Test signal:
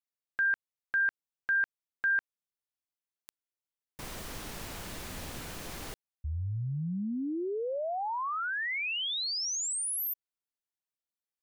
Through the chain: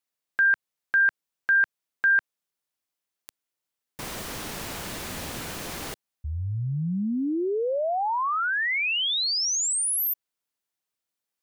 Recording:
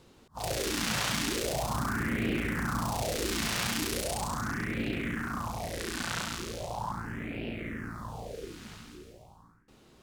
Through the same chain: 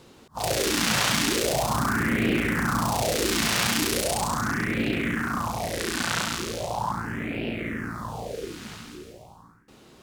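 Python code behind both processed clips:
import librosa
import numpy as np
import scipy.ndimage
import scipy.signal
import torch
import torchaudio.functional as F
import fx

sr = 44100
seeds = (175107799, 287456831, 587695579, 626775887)

y = fx.low_shelf(x, sr, hz=62.0, db=-11.0)
y = y * 10.0 ** (7.5 / 20.0)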